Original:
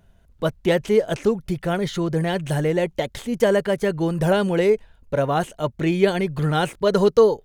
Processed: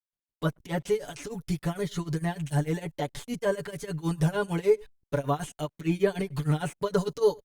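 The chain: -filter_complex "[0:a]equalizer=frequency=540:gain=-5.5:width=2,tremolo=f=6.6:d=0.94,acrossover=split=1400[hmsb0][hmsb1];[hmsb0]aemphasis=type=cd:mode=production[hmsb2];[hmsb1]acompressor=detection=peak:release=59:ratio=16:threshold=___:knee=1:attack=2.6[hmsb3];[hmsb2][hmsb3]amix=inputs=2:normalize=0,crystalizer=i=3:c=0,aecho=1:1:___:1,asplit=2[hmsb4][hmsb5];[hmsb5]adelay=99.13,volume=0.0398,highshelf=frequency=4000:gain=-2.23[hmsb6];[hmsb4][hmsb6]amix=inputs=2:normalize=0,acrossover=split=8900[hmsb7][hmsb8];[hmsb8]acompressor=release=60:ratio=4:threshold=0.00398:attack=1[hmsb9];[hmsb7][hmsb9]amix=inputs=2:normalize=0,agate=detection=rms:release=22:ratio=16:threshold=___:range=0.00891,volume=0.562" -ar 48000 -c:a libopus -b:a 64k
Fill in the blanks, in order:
0.00631, 6.9, 0.00562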